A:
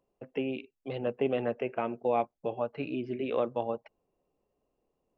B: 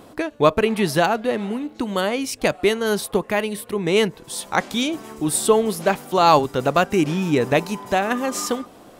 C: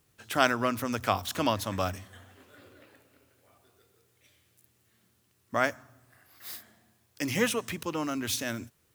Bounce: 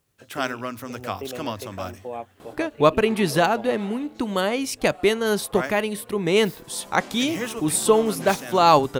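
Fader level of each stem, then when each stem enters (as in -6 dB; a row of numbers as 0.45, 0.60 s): -5.5, -1.0, -3.0 dB; 0.00, 2.40, 0.00 s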